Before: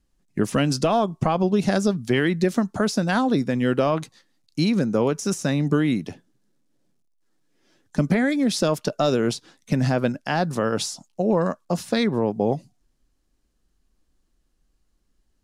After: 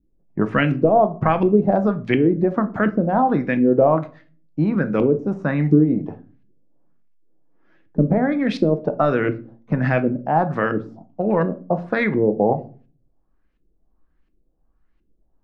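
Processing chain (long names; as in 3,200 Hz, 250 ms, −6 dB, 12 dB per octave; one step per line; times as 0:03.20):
dynamic equaliser 2,100 Hz, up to +4 dB, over −40 dBFS, Q 1.3
auto-filter low-pass saw up 1.4 Hz 300–2,600 Hz
rectangular room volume 250 cubic metres, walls furnished, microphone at 0.62 metres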